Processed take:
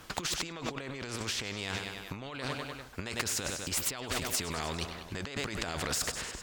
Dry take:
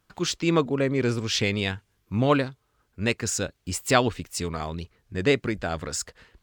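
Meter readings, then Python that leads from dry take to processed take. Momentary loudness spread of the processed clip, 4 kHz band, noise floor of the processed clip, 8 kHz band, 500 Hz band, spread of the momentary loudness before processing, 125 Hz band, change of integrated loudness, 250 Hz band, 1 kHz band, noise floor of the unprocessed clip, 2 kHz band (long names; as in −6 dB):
8 LU, −4.0 dB, −47 dBFS, −2.5 dB, −14.5 dB, 11 LU, −12.0 dB, −8.5 dB, −14.0 dB, −9.0 dB, −71 dBFS, −7.0 dB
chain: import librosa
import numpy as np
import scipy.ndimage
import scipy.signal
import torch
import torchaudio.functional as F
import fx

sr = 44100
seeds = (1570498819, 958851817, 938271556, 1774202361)

p1 = fx.high_shelf(x, sr, hz=10000.0, db=-6.0)
p2 = p1 + fx.echo_feedback(p1, sr, ms=99, feedback_pct=53, wet_db=-20.0, dry=0)
p3 = fx.over_compress(p2, sr, threshold_db=-35.0, ratio=-1.0)
y = fx.spectral_comp(p3, sr, ratio=2.0)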